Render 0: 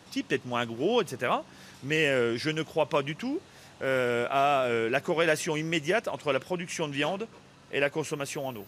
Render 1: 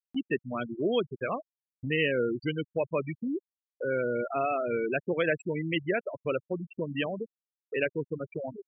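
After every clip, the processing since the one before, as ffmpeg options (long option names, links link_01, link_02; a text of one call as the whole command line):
ffmpeg -i in.wav -af "afftfilt=real='re*gte(hypot(re,im),0.0891)':imag='im*gte(hypot(re,im),0.0891)':win_size=1024:overlap=0.75,equalizer=frequency=900:width_type=o:width=0.76:gain=-9.5,acompressor=mode=upward:threshold=-29dB:ratio=2.5" out.wav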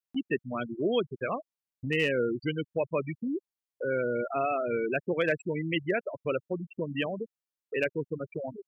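ffmpeg -i in.wav -af "asoftclip=type=hard:threshold=-17dB" out.wav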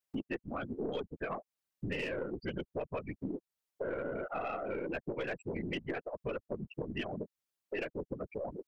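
ffmpeg -i in.wav -af "afftfilt=real='hypot(re,im)*cos(2*PI*random(0))':imag='hypot(re,im)*sin(2*PI*random(1))':win_size=512:overlap=0.75,aeval=exprs='0.1*(cos(1*acos(clip(val(0)/0.1,-1,1)))-cos(1*PI/2))+0.00891*(cos(4*acos(clip(val(0)/0.1,-1,1)))-cos(4*PI/2))+0.00447*(cos(5*acos(clip(val(0)/0.1,-1,1)))-cos(5*PI/2))':channel_layout=same,acompressor=threshold=-44dB:ratio=4,volume=7.5dB" out.wav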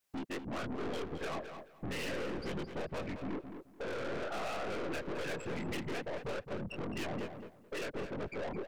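ffmpeg -i in.wav -filter_complex "[0:a]flanger=delay=19:depth=7.6:speed=2.3,aeval=exprs='(tanh(316*val(0)+0.4)-tanh(0.4))/316':channel_layout=same,asplit=2[link_01][link_02];[link_02]adelay=216,lowpass=frequency=4300:poles=1,volume=-8dB,asplit=2[link_03][link_04];[link_04]adelay=216,lowpass=frequency=4300:poles=1,volume=0.22,asplit=2[link_05][link_06];[link_06]adelay=216,lowpass=frequency=4300:poles=1,volume=0.22[link_07];[link_03][link_05][link_07]amix=inputs=3:normalize=0[link_08];[link_01][link_08]amix=inputs=2:normalize=0,volume=12.5dB" out.wav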